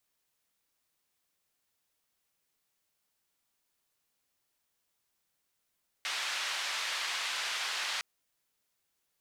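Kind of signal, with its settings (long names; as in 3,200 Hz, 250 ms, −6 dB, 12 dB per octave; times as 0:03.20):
band-limited noise 1,100–3,900 Hz, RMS −35 dBFS 1.96 s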